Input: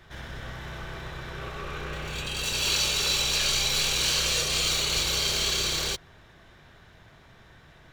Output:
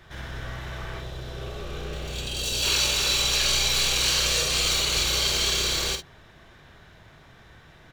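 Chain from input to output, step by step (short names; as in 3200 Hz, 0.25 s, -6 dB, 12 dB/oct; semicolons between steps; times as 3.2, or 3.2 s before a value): 1–2.63 band shelf 1500 Hz -8 dB; early reflections 48 ms -8 dB, 62 ms -17.5 dB; gain +1.5 dB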